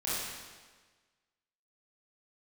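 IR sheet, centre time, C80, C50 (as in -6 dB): 0.114 s, -0.5 dB, -3.5 dB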